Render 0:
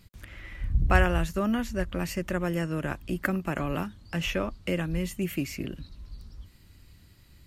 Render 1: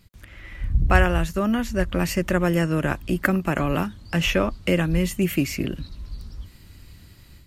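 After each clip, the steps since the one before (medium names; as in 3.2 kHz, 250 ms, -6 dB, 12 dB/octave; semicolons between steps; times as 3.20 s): level rider gain up to 8 dB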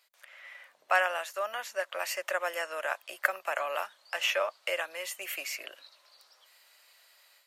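Chebyshev high-pass 580 Hz, order 4; trim -4 dB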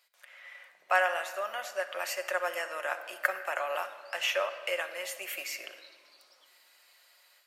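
simulated room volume 3200 m³, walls mixed, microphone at 0.95 m; trim -1.5 dB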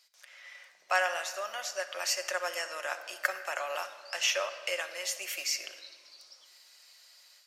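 peaking EQ 5.6 kHz +14.5 dB 1.1 oct; trim -3 dB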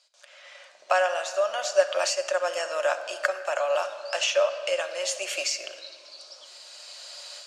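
recorder AGC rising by 7.9 dB/s; cabinet simulation 230–8500 Hz, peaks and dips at 600 Hz +10 dB, 2 kHz -9 dB, 5.6 kHz -5 dB; trim +3 dB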